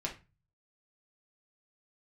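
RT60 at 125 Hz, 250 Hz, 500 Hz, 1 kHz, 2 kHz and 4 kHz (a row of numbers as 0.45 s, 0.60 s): 0.70 s, 0.40 s, 0.30 s, 0.30 s, 0.30 s, 0.25 s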